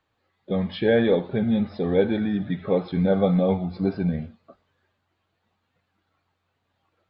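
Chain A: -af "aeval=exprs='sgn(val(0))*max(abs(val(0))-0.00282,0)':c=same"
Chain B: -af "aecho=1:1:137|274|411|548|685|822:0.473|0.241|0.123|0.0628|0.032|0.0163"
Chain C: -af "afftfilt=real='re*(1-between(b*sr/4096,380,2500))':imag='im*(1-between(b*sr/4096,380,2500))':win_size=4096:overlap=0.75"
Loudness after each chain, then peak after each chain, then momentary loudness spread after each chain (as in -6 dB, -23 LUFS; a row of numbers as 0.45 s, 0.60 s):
-23.5 LUFS, -22.5 LUFS, -26.0 LUFS; -8.5 dBFS, -7.0 dBFS, -13.0 dBFS; 8 LU, 10 LU, 6 LU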